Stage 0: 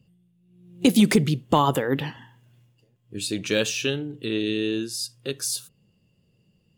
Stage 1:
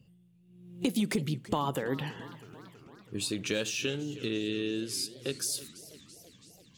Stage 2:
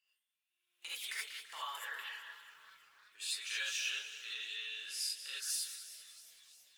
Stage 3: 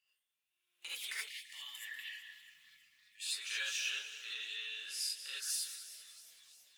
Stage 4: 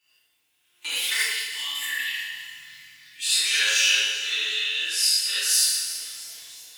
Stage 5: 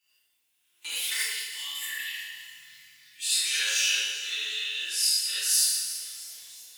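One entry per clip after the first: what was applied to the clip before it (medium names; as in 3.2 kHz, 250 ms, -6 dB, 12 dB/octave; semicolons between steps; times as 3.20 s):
compression 2.5:1, threshold -32 dBFS, peak gain reduction 13 dB; modulated delay 331 ms, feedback 67%, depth 198 cents, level -17.5 dB
ladder high-pass 1.2 kHz, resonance 30%; gated-style reverb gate 100 ms rising, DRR -6.5 dB; bit-crushed delay 191 ms, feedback 55%, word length 10-bit, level -11.5 dB; trim -4.5 dB
time-frequency box 1.29–3.26 s, 290–1700 Hz -21 dB
FDN reverb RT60 1.1 s, low-frequency decay 1×, high-frequency decay 0.85×, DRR -9.5 dB; trim +8.5 dB
treble shelf 4.6 kHz +7.5 dB; trim -8 dB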